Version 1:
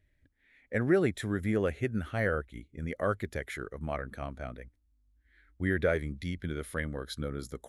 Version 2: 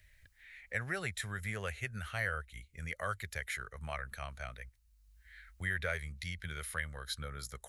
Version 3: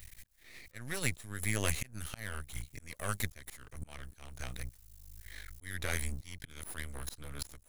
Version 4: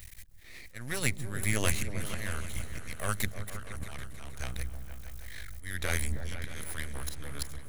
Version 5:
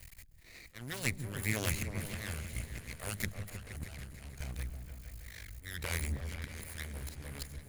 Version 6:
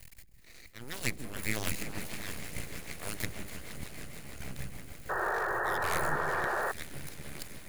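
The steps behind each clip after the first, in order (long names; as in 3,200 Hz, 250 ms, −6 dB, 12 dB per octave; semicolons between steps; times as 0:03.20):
guitar amp tone stack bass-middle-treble 10-0-10; notch filter 3,400 Hz, Q 16; multiband upward and downward compressor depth 40%; level +5 dB
drawn EQ curve 150 Hz 0 dB, 1,400 Hz −9 dB, 5,900 Hz +6 dB, 11,000 Hz +10 dB; volume swells 565 ms; half-wave rectification; level +14.5 dB
echo whose low-pass opens from repeat to repeat 157 ms, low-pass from 200 Hz, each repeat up 2 octaves, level −6 dB; level +3.5 dB
lower of the sound and its delayed copy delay 0.44 ms; level −1 dB
echo that builds up and dies away 155 ms, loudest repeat 5, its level −16.5 dB; full-wave rectification; sound drawn into the spectrogram noise, 0:05.09–0:06.72, 330–1,900 Hz −34 dBFS; level +2 dB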